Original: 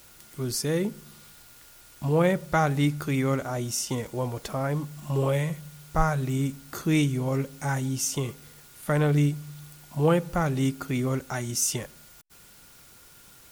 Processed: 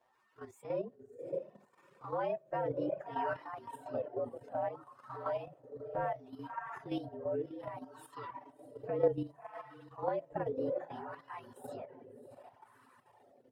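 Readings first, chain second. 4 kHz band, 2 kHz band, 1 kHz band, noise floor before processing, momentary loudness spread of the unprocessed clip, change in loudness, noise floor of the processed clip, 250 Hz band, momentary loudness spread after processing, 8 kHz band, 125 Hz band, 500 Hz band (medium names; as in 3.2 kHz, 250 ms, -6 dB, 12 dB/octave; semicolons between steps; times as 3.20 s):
-23.5 dB, -15.5 dB, -8.0 dB, -52 dBFS, 12 LU, -12.5 dB, -67 dBFS, -16.5 dB, 16 LU, under -35 dB, -23.5 dB, -7.0 dB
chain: frequency axis rescaled in octaves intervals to 114%; echo that smears into a reverb 634 ms, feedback 42%, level -8 dB; wah-wah 0.64 Hz 490–1100 Hz, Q 3.1; reverb removal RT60 1.2 s; level held to a coarse grid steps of 10 dB; trim +6 dB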